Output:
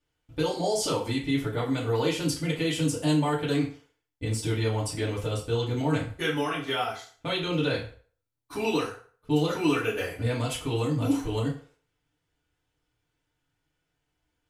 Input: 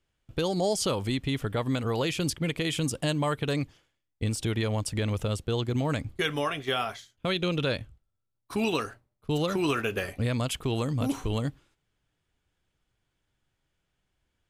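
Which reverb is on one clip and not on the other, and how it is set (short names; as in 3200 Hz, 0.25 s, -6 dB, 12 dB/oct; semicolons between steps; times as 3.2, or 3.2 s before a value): FDN reverb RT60 0.45 s, low-frequency decay 0.7×, high-frequency decay 0.8×, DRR -7 dB; gain -7 dB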